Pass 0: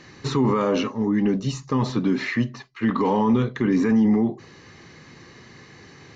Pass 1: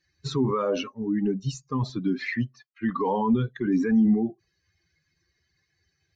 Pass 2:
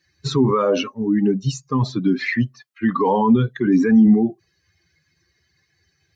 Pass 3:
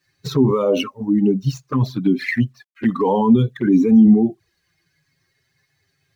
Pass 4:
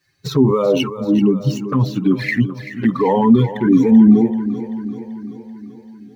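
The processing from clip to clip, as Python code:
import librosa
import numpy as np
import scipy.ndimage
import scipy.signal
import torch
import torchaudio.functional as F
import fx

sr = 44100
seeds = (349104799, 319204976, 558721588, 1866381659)

y1 = fx.bin_expand(x, sr, power=2.0)
y2 = scipy.signal.sosfilt(scipy.signal.butter(2, 63.0, 'highpass', fs=sr, output='sos'), y1)
y2 = y2 * librosa.db_to_amplitude(7.5)
y3 = scipy.signal.medfilt(y2, 5)
y3 = fx.quant_dither(y3, sr, seeds[0], bits=12, dither='none')
y3 = fx.env_flanger(y3, sr, rest_ms=7.5, full_db=-14.5)
y3 = y3 * librosa.db_to_amplitude(2.0)
y4 = fx.echo_feedback(y3, sr, ms=386, feedback_pct=59, wet_db=-12.5)
y4 = y4 * librosa.db_to_amplitude(2.0)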